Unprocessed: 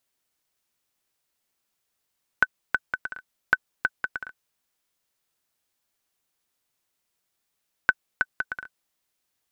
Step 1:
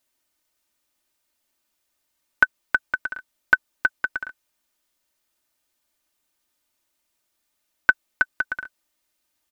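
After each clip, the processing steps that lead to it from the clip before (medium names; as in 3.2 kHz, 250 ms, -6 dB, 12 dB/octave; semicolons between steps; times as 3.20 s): comb 3.3 ms, depth 57%; trim +2 dB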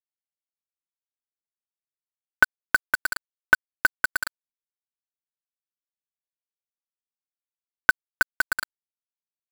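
in parallel at -2 dB: compression 6:1, threshold -24 dBFS, peak gain reduction 13.5 dB; on the sum: bit crusher 4-bit; trim -2.5 dB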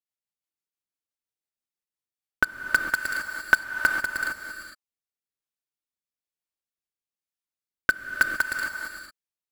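rotary cabinet horn 6 Hz, later 1.1 Hz, at 1.68 s; gated-style reverb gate 480 ms rising, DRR 4 dB; trim +1 dB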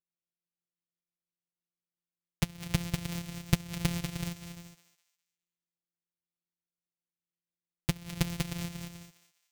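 sorted samples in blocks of 256 samples; high-order bell 650 Hz -10 dB 3 oct; thinning echo 206 ms, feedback 33%, high-pass 1 kHz, level -11 dB; trim -5 dB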